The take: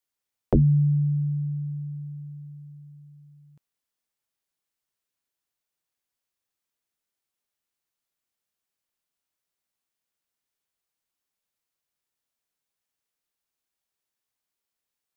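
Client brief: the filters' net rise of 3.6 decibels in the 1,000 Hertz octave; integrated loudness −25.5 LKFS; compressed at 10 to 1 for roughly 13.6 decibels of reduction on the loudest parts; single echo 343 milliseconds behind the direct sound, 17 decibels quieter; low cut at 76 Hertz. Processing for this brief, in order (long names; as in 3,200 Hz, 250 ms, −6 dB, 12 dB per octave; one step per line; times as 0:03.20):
high-pass filter 76 Hz
parametric band 1,000 Hz +5 dB
downward compressor 10 to 1, threshold −30 dBFS
single-tap delay 343 ms −17 dB
level +9 dB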